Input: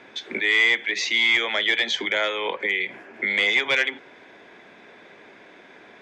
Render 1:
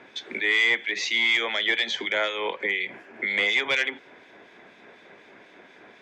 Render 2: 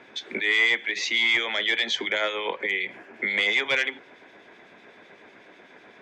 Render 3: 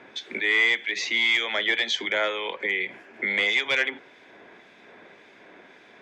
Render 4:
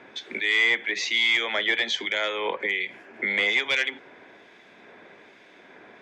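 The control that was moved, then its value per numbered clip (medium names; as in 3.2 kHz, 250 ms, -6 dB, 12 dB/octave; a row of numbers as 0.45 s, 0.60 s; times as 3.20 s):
harmonic tremolo, rate: 4.1 Hz, 8 Hz, 1.8 Hz, 1.2 Hz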